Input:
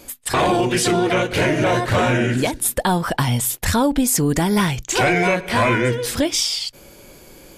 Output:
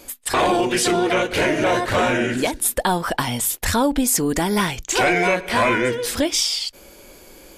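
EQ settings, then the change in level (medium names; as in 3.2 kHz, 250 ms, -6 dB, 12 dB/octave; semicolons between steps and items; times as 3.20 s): peaking EQ 130 Hz -10.5 dB 0.95 oct; 0.0 dB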